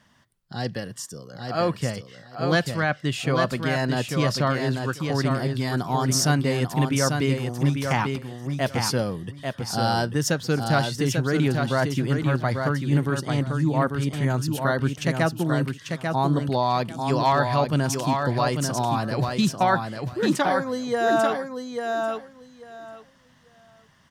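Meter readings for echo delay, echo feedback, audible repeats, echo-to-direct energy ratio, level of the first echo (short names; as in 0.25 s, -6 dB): 0.843 s, 18%, 3, -5.0 dB, -5.0 dB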